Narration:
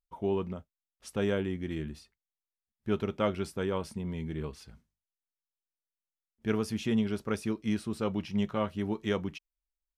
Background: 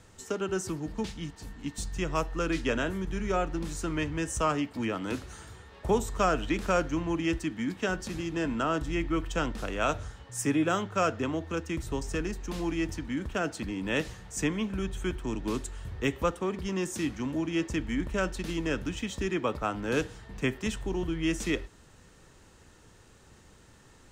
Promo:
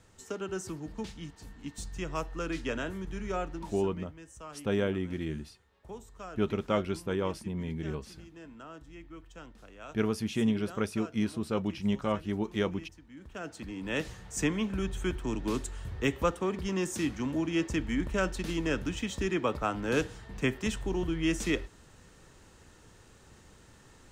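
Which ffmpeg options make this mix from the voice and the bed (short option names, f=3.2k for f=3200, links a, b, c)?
-filter_complex "[0:a]adelay=3500,volume=0.5dB[a];[1:a]volume=13.5dB,afade=t=out:st=3.44:d=0.49:silence=0.211349,afade=t=in:st=13.12:d=1.29:silence=0.11885[b];[a][b]amix=inputs=2:normalize=0"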